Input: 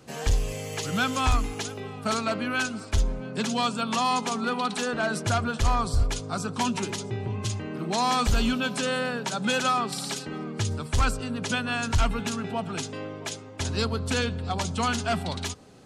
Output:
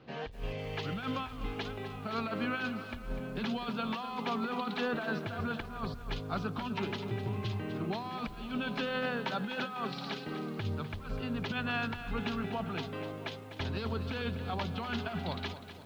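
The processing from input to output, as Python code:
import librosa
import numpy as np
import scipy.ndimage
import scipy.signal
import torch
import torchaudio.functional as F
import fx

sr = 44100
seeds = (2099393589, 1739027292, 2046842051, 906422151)

y = scipy.signal.sosfilt(scipy.signal.cheby2(4, 50, 8900.0, 'lowpass', fs=sr, output='sos'), x)
y = fx.peak_eq(y, sr, hz=73.0, db=-8.0, octaves=0.35)
y = fx.over_compress(y, sr, threshold_db=-28.0, ratio=-0.5)
y = fx.echo_crushed(y, sr, ms=250, feedback_pct=55, bits=8, wet_db=-11)
y = y * 10.0 ** (-6.5 / 20.0)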